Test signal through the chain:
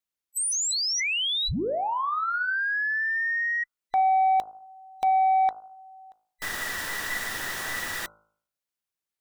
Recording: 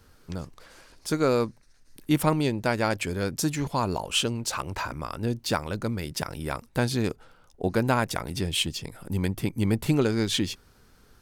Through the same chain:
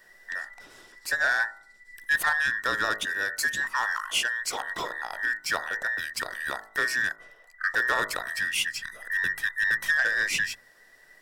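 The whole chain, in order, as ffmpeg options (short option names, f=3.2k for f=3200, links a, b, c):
-af "afftfilt=real='real(if(between(b,1,1012),(2*floor((b-1)/92)+1)*92-b,b),0)':imag='imag(if(between(b,1,1012),(2*floor((b-1)/92)+1)*92-b,b),0)*if(between(b,1,1012),-1,1)':win_size=2048:overlap=0.75,asoftclip=type=tanh:threshold=-15.5dB,bandreject=f=53.38:t=h:w=4,bandreject=f=106.76:t=h:w=4,bandreject=f=160.14:t=h:w=4,bandreject=f=213.52:t=h:w=4,bandreject=f=266.9:t=h:w=4,bandreject=f=320.28:t=h:w=4,bandreject=f=373.66:t=h:w=4,bandreject=f=427.04:t=h:w=4,bandreject=f=480.42:t=h:w=4,bandreject=f=533.8:t=h:w=4,bandreject=f=587.18:t=h:w=4,bandreject=f=640.56:t=h:w=4,bandreject=f=693.94:t=h:w=4,bandreject=f=747.32:t=h:w=4,bandreject=f=800.7:t=h:w=4,bandreject=f=854.08:t=h:w=4,bandreject=f=907.46:t=h:w=4,bandreject=f=960.84:t=h:w=4,bandreject=f=1.01422k:t=h:w=4,bandreject=f=1.0676k:t=h:w=4,bandreject=f=1.12098k:t=h:w=4,bandreject=f=1.17436k:t=h:w=4,bandreject=f=1.22774k:t=h:w=4,bandreject=f=1.28112k:t=h:w=4,bandreject=f=1.3345k:t=h:w=4,bandreject=f=1.38788k:t=h:w=4,bandreject=f=1.44126k:t=h:w=4,bandreject=f=1.49464k:t=h:w=4"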